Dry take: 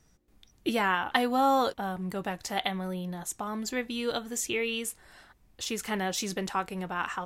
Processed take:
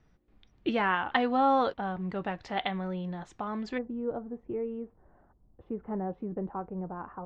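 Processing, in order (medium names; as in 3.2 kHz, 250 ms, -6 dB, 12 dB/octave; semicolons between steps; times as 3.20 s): Bessel low-pass 2.7 kHz, order 4, from 3.77 s 650 Hz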